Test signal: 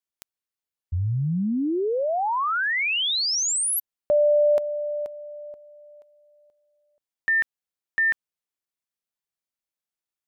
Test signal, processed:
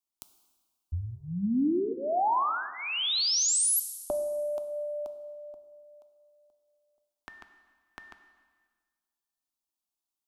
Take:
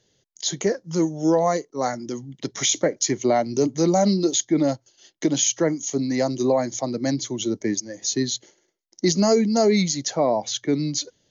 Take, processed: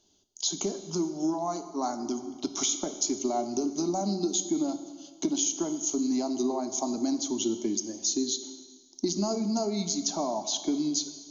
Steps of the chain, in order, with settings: compressor, threshold -25 dBFS; fixed phaser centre 500 Hz, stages 6; plate-style reverb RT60 1.6 s, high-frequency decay 0.95×, DRR 9 dB; gain +1.5 dB

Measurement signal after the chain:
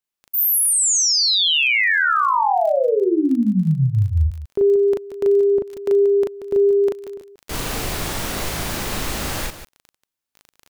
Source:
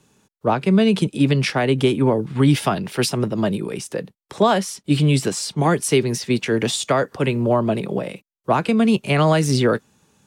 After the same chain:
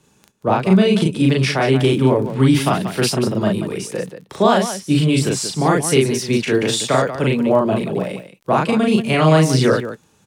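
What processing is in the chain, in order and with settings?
crackle 10/s -29 dBFS; on a send: loudspeakers at several distances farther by 13 m -1 dB, 63 m -10 dB

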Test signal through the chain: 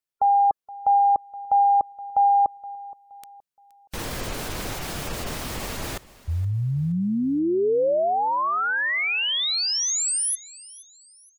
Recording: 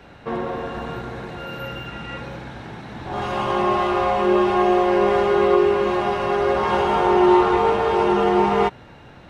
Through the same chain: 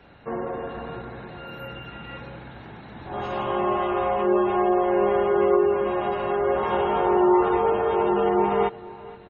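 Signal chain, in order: spectral gate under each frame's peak -30 dB strong; dynamic EQ 500 Hz, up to +4 dB, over -32 dBFS, Q 1.1; feedback echo 0.471 s, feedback 37%, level -20 dB; gain -6 dB

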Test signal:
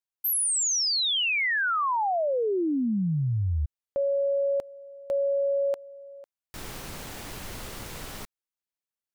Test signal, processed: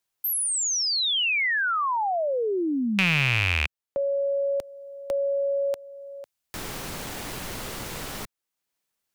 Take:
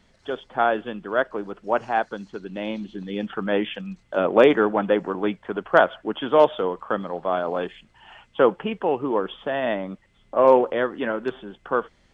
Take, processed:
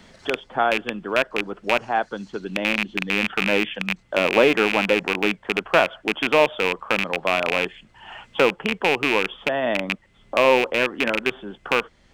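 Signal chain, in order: rattling part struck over -32 dBFS, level -9 dBFS; three-band squash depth 40%

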